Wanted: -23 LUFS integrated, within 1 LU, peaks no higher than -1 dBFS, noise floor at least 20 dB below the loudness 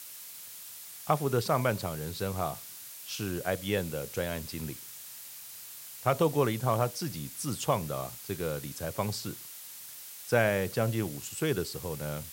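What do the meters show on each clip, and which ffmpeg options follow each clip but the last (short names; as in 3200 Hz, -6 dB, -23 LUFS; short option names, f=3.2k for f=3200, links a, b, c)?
noise floor -46 dBFS; noise floor target -53 dBFS; loudness -32.5 LUFS; peak -10.5 dBFS; loudness target -23.0 LUFS
-> -af "afftdn=nr=7:nf=-46"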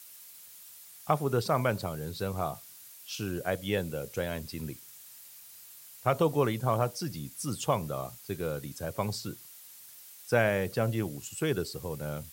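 noise floor -51 dBFS; noise floor target -52 dBFS
-> -af "afftdn=nr=6:nf=-51"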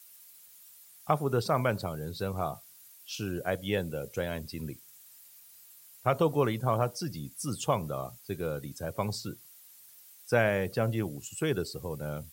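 noise floor -55 dBFS; loudness -32.0 LUFS; peak -10.5 dBFS; loudness target -23.0 LUFS
-> -af "volume=9dB"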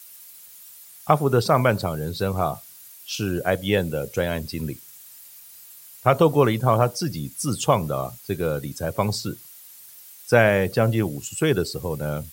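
loudness -23.0 LUFS; peak -1.5 dBFS; noise floor -46 dBFS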